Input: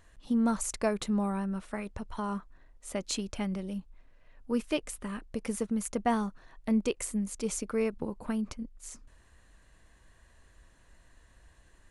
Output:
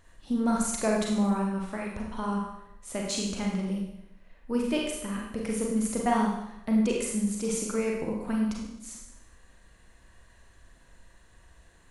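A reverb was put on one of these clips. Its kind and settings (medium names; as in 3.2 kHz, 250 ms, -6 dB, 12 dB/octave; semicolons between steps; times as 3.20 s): Schroeder reverb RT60 0.81 s, combs from 33 ms, DRR -1.5 dB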